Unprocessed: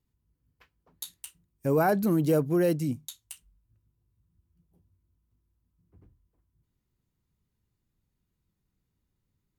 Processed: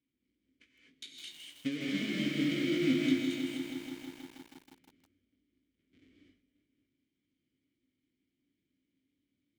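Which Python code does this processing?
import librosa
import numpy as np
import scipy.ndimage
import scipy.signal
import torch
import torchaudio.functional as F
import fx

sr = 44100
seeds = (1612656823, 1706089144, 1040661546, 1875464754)

y = fx.halfwave_hold(x, sr)
y = scipy.signal.sosfilt(scipy.signal.butter(4, 9100.0, 'lowpass', fs=sr, output='sos'), y)
y = fx.high_shelf(y, sr, hz=4800.0, db=10.5)
y = fx.hum_notches(y, sr, base_hz=50, count=6)
y = fx.over_compress(y, sr, threshold_db=-23.0, ratio=-0.5)
y = fx.vowel_filter(y, sr, vowel='i')
y = fx.doubler(y, sr, ms=20.0, db=-8.0)
y = fx.rev_gated(y, sr, seeds[0], gate_ms=270, shape='rising', drr_db=-2.5)
y = fx.echo_crushed(y, sr, ms=160, feedback_pct=80, bits=9, wet_db=-6.5)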